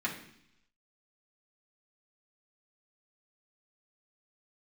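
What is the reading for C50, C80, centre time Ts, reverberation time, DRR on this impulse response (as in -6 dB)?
8.0 dB, 11.5 dB, 22 ms, 0.70 s, -5.5 dB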